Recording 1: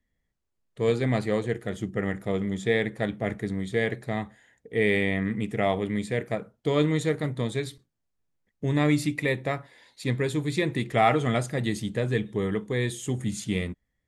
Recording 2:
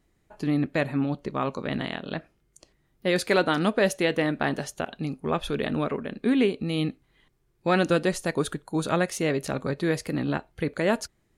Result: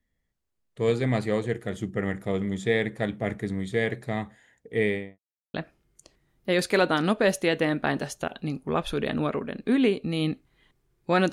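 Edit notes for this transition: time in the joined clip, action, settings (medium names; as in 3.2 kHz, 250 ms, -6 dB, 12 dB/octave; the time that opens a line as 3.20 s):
recording 1
4.76–5.19 s: studio fade out
5.19–5.54 s: mute
5.54 s: go over to recording 2 from 2.11 s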